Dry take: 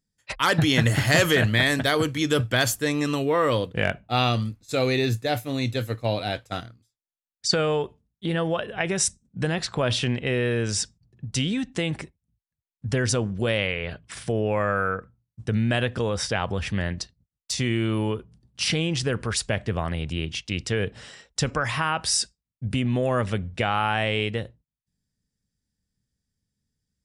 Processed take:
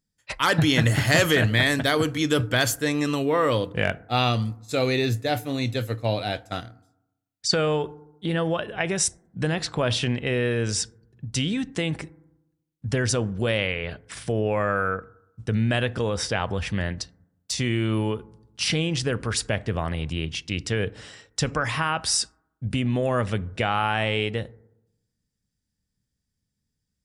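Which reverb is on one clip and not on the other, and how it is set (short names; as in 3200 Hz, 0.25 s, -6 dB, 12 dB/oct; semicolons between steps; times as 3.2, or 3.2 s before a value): FDN reverb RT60 0.88 s, low-frequency decay 1.2×, high-frequency decay 0.25×, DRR 19 dB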